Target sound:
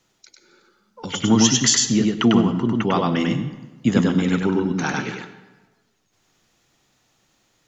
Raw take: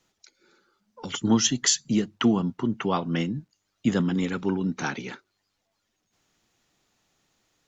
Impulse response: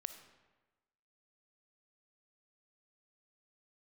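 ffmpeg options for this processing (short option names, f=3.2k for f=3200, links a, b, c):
-filter_complex "[0:a]equalizer=f=130:w=4.7:g=3.5,asplit=2[a][b];[1:a]atrim=start_sample=2205,adelay=99[c];[b][c]afir=irnorm=-1:irlink=0,volume=1.5dB[d];[a][d]amix=inputs=2:normalize=0,volume=4dB"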